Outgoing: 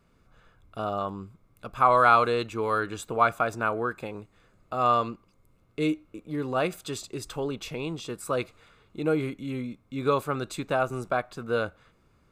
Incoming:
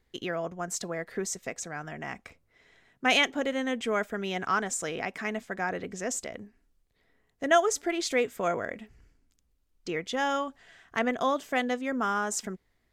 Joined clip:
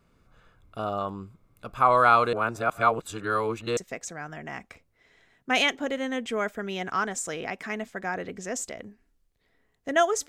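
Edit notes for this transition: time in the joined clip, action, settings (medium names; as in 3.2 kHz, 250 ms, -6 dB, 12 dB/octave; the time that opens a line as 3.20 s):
outgoing
2.33–3.77 s: reverse
3.77 s: go over to incoming from 1.32 s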